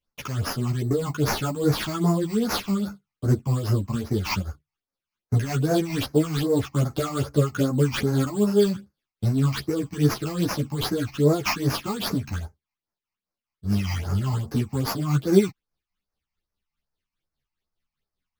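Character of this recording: aliases and images of a low sample rate 8000 Hz, jitter 0%; phasing stages 8, 2.5 Hz, lowest notch 440–3300 Hz; tremolo triangle 4.9 Hz, depth 60%; a shimmering, thickened sound

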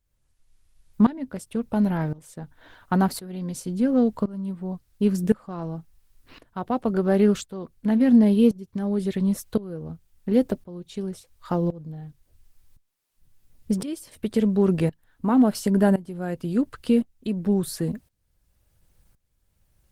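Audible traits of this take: a quantiser's noise floor 12-bit, dither triangular; tremolo saw up 0.94 Hz, depth 90%; Opus

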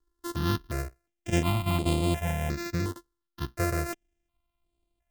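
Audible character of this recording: a buzz of ramps at a fixed pitch in blocks of 128 samples; notches that jump at a steady rate 2.8 Hz 650–5800 Hz

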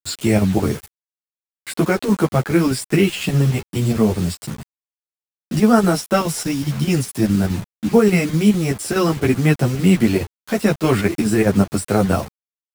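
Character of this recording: chopped level 4.8 Hz, depth 60%, duty 80%; a quantiser's noise floor 6-bit, dither none; a shimmering, thickened sound

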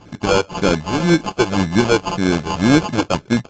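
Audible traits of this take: a buzz of ramps at a fixed pitch in blocks of 16 samples; phasing stages 12, 1.9 Hz, lowest notch 210–1100 Hz; aliases and images of a low sample rate 1900 Hz, jitter 0%; AAC

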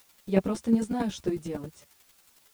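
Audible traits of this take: a quantiser's noise floor 10-bit, dither triangular; chopped level 11 Hz, depth 60%, duty 10%; a shimmering, thickened sound

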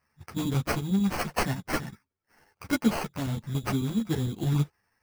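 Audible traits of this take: chopped level 11 Hz, depth 60%, duty 85%; aliases and images of a low sample rate 3600 Hz, jitter 0%; a shimmering, thickened sound

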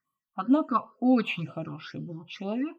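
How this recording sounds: phasing stages 6, 2.1 Hz, lowest notch 410–1700 Hz

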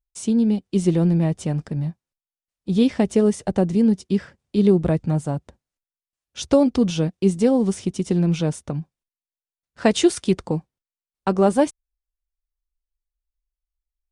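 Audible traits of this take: noise floor -96 dBFS; spectral tilt -7.5 dB/oct

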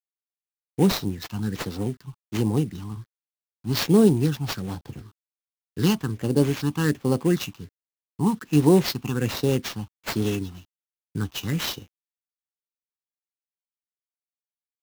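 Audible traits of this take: a quantiser's noise floor 10-bit, dither none; phasing stages 6, 1.3 Hz, lowest notch 470–2000 Hz; aliases and images of a low sample rate 9300 Hz, jitter 20%

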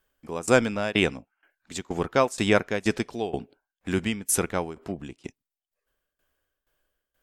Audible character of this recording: tremolo saw down 2.1 Hz, depth 90%

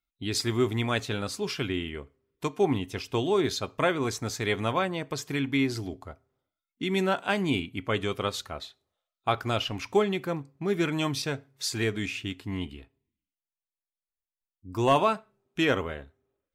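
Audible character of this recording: noise floor -94 dBFS; spectral tilt -5.0 dB/oct

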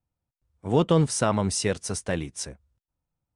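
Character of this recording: noise floor -90 dBFS; spectral tilt -5.0 dB/oct

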